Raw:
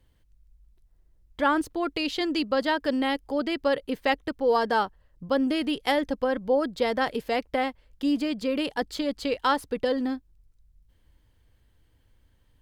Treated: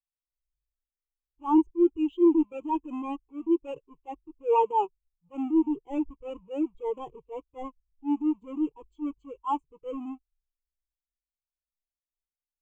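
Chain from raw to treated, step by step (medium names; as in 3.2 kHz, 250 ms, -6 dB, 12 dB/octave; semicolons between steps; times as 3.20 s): square wave that keeps the level; rippled EQ curve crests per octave 0.7, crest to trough 13 dB; in parallel at 0 dB: peak limiter -13 dBFS, peak gain reduction 7 dB; on the sum: transient shaper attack -9 dB, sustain +4 dB; spectral contrast expander 2.5:1; trim -8 dB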